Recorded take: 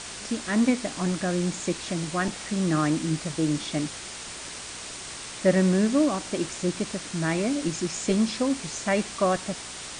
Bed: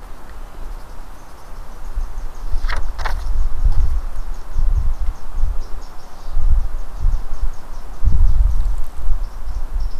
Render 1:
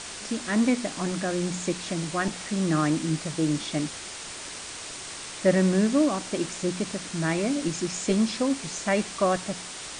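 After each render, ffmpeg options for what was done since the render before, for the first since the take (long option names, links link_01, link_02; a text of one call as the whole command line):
ffmpeg -i in.wav -af "bandreject=frequency=60:width_type=h:width=4,bandreject=frequency=120:width_type=h:width=4,bandreject=frequency=180:width_type=h:width=4,bandreject=frequency=240:width_type=h:width=4" out.wav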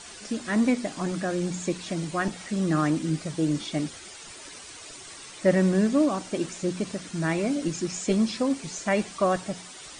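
ffmpeg -i in.wav -af "afftdn=noise_reduction=10:noise_floor=-39" out.wav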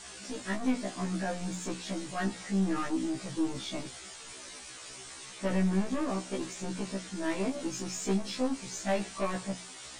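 ffmpeg -i in.wav -af "aeval=exprs='(tanh(15.8*val(0)+0.2)-tanh(0.2))/15.8':channel_layout=same,afftfilt=real='re*1.73*eq(mod(b,3),0)':imag='im*1.73*eq(mod(b,3),0)':win_size=2048:overlap=0.75" out.wav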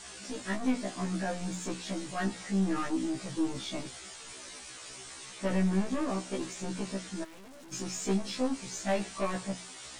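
ffmpeg -i in.wav -filter_complex "[0:a]asplit=3[link_01][link_02][link_03];[link_01]afade=type=out:start_time=7.23:duration=0.02[link_04];[link_02]aeval=exprs='(tanh(316*val(0)+0.25)-tanh(0.25))/316':channel_layout=same,afade=type=in:start_time=7.23:duration=0.02,afade=type=out:start_time=7.71:duration=0.02[link_05];[link_03]afade=type=in:start_time=7.71:duration=0.02[link_06];[link_04][link_05][link_06]amix=inputs=3:normalize=0" out.wav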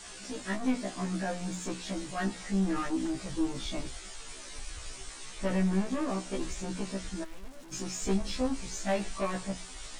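ffmpeg -i in.wav -i bed.wav -filter_complex "[1:a]volume=-28dB[link_01];[0:a][link_01]amix=inputs=2:normalize=0" out.wav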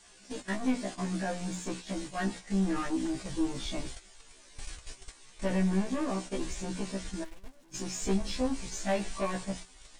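ffmpeg -i in.wav -af "agate=range=-11dB:threshold=-39dB:ratio=16:detection=peak,bandreject=frequency=1300:width=15" out.wav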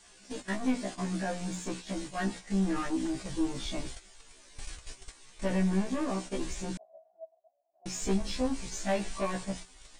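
ffmpeg -i in.wav -filter_complex "[0:a]asettb=1/sr,asplit=3[link_01][link_02][link_03];[link_01]atrim=end=6.774[link_04];[link_02]atrim=start=6.77:end=7.86,asetpts=PTS-STARTPTS,afade=type=in:duration=0.004:curve=qsin,afade=type=out:start_time=1.086:duration=0.004:curve=qsin,asuperpass=centerf=670:order=4:qfactor=7.8[link_05];[link_03]atrim=start=7.856[link_06];[link_04][link_05]acrossfade=duration=0.004:curve1=hsin:curve2=qsin[link_07];[link_07][link_06]acrossfade=duration=0.004:curve1=qsin:curve2=hsin" out.wav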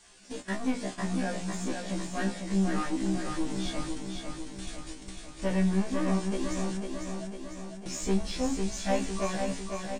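ffmpeg -i in.wav -filter_complex "[0:a]asplit=2[link_01][link_02];[link_02]adelay=26,volume=-10.5dB[link_03];[link_01][link_03]amix=inputs=2:normalize=0,aecho=1:1:500|1000|1500|2000|2500|3000|3500|4000:0.562|0.332|0.196|0.115|0.0681|0.0402|0.0237|0.014" out.wav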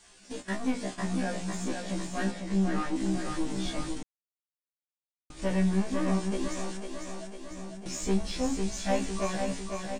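ffmpeg -i in.wav -filter_complex "[0:a]asettb=1/sr,asplit=3[link_01][link_02][link_03];[link_01]atrim=end=2.314[link_04];[link_02]atrim=start=2.31:end=2.96,asetpts=PTS-STARTPTS,afade=type=in:duration=0.004:curve=qsin,afade=type=out:start_time=0.646:duration=0.004:curve=qsin,highshelf=frequency=6100:gain=-7.5[link_05];[link_03]atrim=start=2.956[link_06];[link_04][link_05]acrossfade=duration=0.004:curve1=hsin:curve2=qsin[link_07];[link_07][link_06]acrossfade=duration=0.004:curve1=qsin:curve2=hsin,asettb=1/sr,asplit=3[link_08][link_09][link_10];[link_08]atrim=end=6.484[link_11];[link_09]atrim=start=6.48:end=7.51,asetpts=PTS-STARTPTS,afade=type=in:duration=0.004:curve=qsin,afade=type=out:start_time=1.026:duration=0.004:curve=qsin,equalizer=frequency=88:width_type=o:width=2.3:gain=-13.5[link_12];[link_10]atrim=start=7.506[link_13];[link_11][link_12]acrossfade=duration=0.004:curve1=hsin:curve2=qsin[link_14];[link_14][link_13]acrossfade=duration=0.004:curve1=qsin:curve2=hsin,asplit=3[link_15][link_16][link_17];[link_15]atrim=end=4.03,asetpts=PTS-STARTPTS,afade=type=out:start_time=4.026:duration=0.004:curve=hsin[link_18];[link_16]atrim=start=4.03:end=5.3,asetpts=PTS-STARTPTS,volume=0[link_19];[link_17]atrim=start=5.3,asetpts=PTS-STARTPTS,afade=type=in:duration=0.004:curve=hsin[link_20];[link_18][link_19][link_20]concat=n=3:v=0:a=1" out.wav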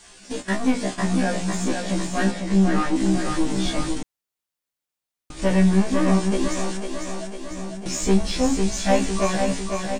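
ffmpeg -i in.wav -af "volume=9dB" out.wav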